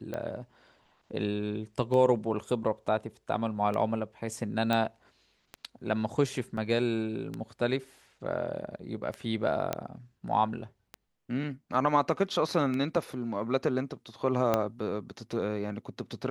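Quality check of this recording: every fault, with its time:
tick 33 1/3 rpm -22 dBFS
4.73 s: pop -15 dBFS
6.57 s: dropout 3.6 ms
9.73 s: pop -14 dBFS
14.54 s: pop -12 dBFS

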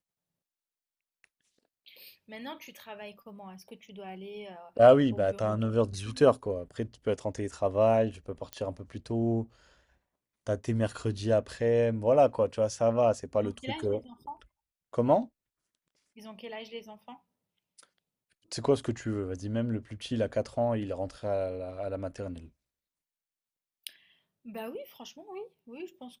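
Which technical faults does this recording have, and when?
8.53 s: pop -20 dBFS

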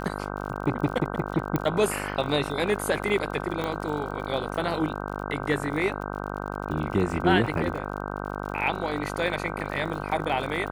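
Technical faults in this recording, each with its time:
buzz 50 Hz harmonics 31 -33 dBFS
crackle 60 per s -35 dBFS
1.56 s: pop -12 dBFS
3.64 s: pop -16 dBFS

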